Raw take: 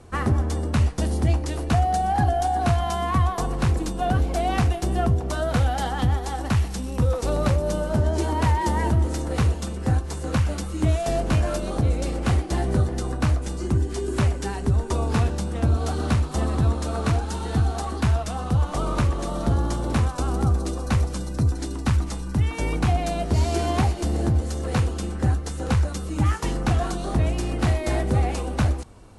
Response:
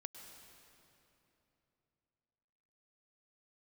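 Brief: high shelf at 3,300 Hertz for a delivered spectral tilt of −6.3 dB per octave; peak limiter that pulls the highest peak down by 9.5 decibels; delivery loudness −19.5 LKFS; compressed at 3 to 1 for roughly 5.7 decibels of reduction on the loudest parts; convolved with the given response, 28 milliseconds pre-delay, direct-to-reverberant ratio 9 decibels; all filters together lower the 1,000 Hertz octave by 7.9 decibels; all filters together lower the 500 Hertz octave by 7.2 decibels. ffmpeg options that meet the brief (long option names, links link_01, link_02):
-filter_complex "[0:a]equalizer=frequency=500:width_type=o:gain=-7.5,equalizer=frequency=1000:width_type=o:gain=-7.5,highshelf=frequency=3300:gain=-4,acompressor=threshold=-24dB:ratio=3,alimiter=limit=-23.5dB:level=0:latency=1,asplit=2[link_01][link_02];[1:a]atrim=start_sample=2205,adelay=28[link_03];[link_02][link_03]afir=irnorm=-1:irlink=0,volume=-4.5dB[link_04];[link_01][link_04]amix=inputs=2:normalize=0,volume=12dB"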